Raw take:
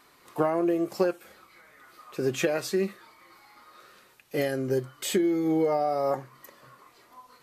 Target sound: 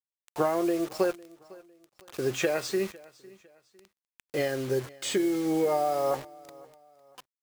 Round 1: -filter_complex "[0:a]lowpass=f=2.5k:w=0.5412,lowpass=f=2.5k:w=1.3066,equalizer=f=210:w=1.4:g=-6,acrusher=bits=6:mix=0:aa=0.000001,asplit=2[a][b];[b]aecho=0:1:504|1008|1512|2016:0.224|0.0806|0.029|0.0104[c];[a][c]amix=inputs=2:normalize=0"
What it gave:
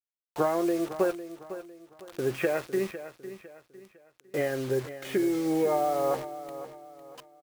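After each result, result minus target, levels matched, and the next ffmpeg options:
echo-to-direct +9.5 dB; 8000 Hz band -5.0 dB
-filter_complex "[0:a]lowpass=f=2.5k:w=0.5412,lowpass=f=2.5k:w=1.3066,equalizer=f=210:w=1.4:g=-6,acrusher=bits=6:mix=0:aa=0.000001,asplit=2[a][b];[b]aecho=0:1:504|1008:0.075|0.027[c];[a][c]amix=inputs=2:normalize=0"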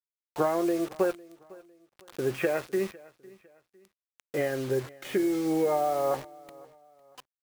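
8000 Hz band -5.5 dB
-filter_complex "[0:a]lowpass=f=8.5k:w=0.5412,lowpass=f=8.5k:w=1.3066,equalizer=f=210:w=1.4:g=-6,acrusher=bits=6:mix=0:aa=0.000001,asplit=2[a][b];[b]aecho=0:1:504|1008:0.075|0.027[c];[a][c]amix=inputs=2:normalize=0"

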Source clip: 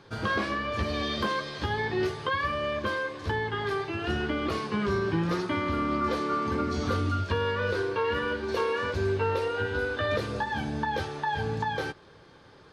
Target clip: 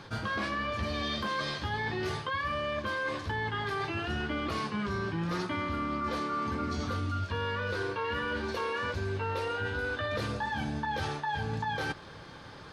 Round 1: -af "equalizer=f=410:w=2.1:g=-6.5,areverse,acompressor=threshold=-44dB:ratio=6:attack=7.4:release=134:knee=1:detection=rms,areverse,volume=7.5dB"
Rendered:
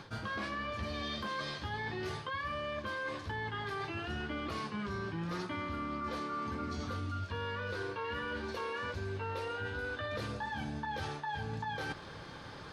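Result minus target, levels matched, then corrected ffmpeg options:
compressor: peak gain reduction +5.5 dB
-af "equalizer=f=410:w=2.1:g=-6.5,areverse,acompressor=threshold=-37.5dB:ratio=6:attack=7.4:release=134:knee=1:detection=rms,areverse,volume=7.5dB"

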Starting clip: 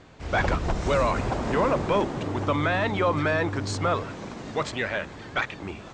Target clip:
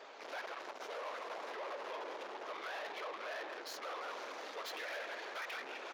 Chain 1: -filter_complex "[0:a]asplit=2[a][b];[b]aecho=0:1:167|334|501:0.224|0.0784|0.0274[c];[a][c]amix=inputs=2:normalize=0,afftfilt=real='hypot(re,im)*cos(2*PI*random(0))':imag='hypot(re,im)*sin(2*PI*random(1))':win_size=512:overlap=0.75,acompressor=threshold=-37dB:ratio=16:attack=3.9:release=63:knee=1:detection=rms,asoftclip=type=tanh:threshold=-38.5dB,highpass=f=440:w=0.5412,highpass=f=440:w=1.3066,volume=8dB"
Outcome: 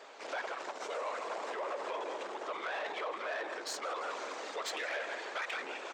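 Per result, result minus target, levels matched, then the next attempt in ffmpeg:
soft clip: distortion -7 dB; 8000 Hz band +3.0 dB
-filter_complex "[0:a]asplit=2[a][b];[b]aecho=0:1:167|334|501:0.224|0.0784|0.0274[c];[a][c]amix=inputs=2:normalize=0,afftfilt=real='hypot(re,im)*cos(2*PI*random(0))':imag='hypot(re,im)*sin(2*PI*random(1))':win_size=512:overlap=0.75,acompressor=threshold=-37dB:ratio=16:attack=3.9:release=63:knee=1:detection=rms,asoftclip=type=tanh:threshold=-47.5dB,highpass=f=440:w=0.5412,highpass=f=440:w=1.3066,volume=8dB"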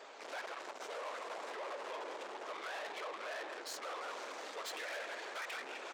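8000 Hz band +4.5 dB
-filter_complex "[0:a]asplit=2[a][b];[b]aecho=0:1:167|334|501:0.224|0.0784|0.0274[c];[a][c]amix=inputs=2:normalize=0,afftfilt=real='hypot(re,im)*cos(2*PI*random(0))':imag='hypot(re,im)*sin(2*PI*random(1))':win_size=512:overlap=0.75,acompressor=threshold=-37dB:ratio=16:attack=3.9:release=63:knee=1:detection=rms,asoftclip=type=tanh:threshold=-47.5dB,highpass=f=440:w=0.5412,highpass=f=440:w=1.3066,equalizer=f=8.1k:w=2.7:g=-12.5,volume=8dB"

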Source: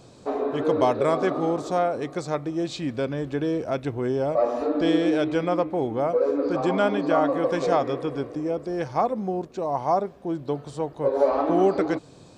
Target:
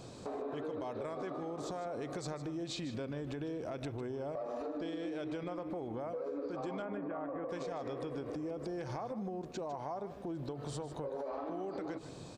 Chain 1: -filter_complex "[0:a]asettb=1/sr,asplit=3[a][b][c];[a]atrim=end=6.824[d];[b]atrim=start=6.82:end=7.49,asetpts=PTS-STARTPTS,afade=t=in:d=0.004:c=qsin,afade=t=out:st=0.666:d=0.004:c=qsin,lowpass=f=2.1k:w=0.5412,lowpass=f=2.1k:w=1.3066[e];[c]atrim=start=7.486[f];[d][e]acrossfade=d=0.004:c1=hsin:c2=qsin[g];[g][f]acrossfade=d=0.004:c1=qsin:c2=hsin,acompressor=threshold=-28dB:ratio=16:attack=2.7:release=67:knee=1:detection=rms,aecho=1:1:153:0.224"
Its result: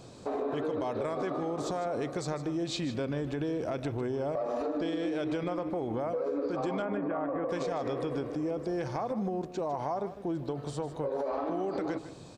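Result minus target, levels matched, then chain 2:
compressor: peak gain reduction -7.5 dB
-filter_complex "[0:a]asettb=1/sr,asplit=3[a][b][c];[a]atrim=end=6.824[d];[b]atrim=start=6.82:end=7.49,asetpts=PTS-STARTPTS,afade=t=in:d=0.004:c=qsin,afade=t=out:st=0.666:d=0.004:c=qsin,lowpass=f=2.1k:w=0.5412,lowpass=f=2.1k:w=1.3066[e];[c]atrim=start=7.486[f];[d][e]acrossfade=d=0.004:c1=hsin:c2=qsin[g];[g][f]acrossfade=d=0.004:c1=qsin:c2=hsin,acompressor=threshold=-36dB:ratio=16:attack=2.7:release=67:knee=1:detection=rms,aecho=1:1:153:0.224"

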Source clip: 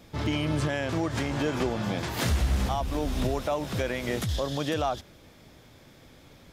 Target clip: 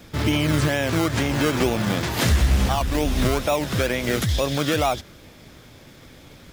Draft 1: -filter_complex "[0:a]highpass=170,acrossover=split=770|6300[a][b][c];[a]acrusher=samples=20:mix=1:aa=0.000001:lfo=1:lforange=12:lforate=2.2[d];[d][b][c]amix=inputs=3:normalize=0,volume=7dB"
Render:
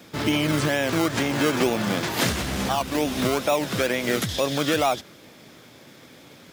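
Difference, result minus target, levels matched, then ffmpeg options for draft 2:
125 Hz band -6.0 dB
-filter_complex "[0:a]acrossover=split=770|6300[a][b][c];[a]acrusher=samples=20:mix=1:aa=0.000001:lfo=1:lforange=12:lforate=2.2[d];[d][b][c]amix=inputs=3:normalize=0,volume=7dB"

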